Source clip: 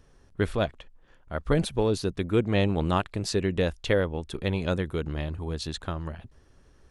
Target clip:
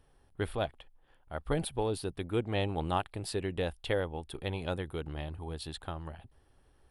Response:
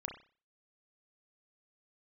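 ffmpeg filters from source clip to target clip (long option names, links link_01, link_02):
-af "equalizer=frequency=200:width_type=o:width=0.33:gain=-6,equalizer=frequency=800:width_type=o:width=0.33:gain=8,equalizer=frequency=3150:width_type=o:width=0.33:gain=4,equalizer=frequency=6300:width_type=o:width=0.33:gain=-11,equalizer=frequency=10000:width_type=o:width=0.33:gain=11,volume=-7.5dB"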